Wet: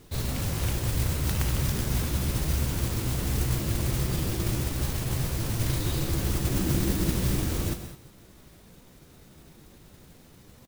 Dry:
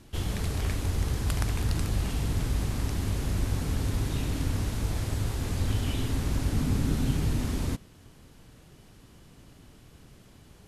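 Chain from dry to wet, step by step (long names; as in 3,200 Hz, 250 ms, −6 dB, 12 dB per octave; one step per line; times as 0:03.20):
pitch shifter +4 semitones
noise that follows the level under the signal 11 dB
on a send: single-tap delay 128 ms −13.5 dB
on the sum: reverb whose tail is shaped and stops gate 230 ms rising, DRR 10 dB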